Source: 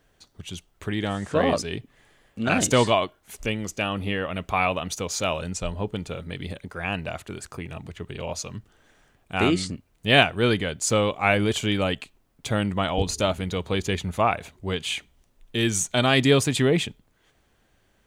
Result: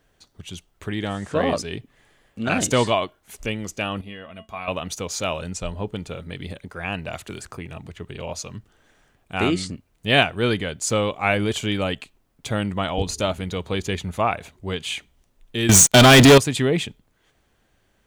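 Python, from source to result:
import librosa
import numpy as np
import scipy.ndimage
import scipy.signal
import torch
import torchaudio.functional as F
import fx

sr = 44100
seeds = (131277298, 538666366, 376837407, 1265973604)

y = fx.comb_fb(x, sr, f0_hz=220.0, decay_s=0.18, harmonics='odd', damping=0.0, mix_pct=80, at=(4.01, 4.68))
y = fx.band_squash(y, sr, depth_pct=100, at=(7.13, 7.54))
y = fx.leveller(y, sr, passes=5, at=(15.69, 16.38))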